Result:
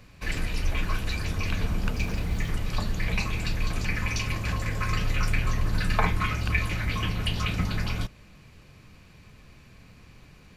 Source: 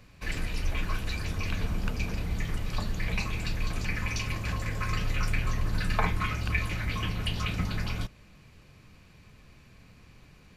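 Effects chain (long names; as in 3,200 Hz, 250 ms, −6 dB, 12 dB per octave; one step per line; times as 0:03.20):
0:01.92–0:02.50: surface crackle 590 per second −46 dBFS
level +3 dB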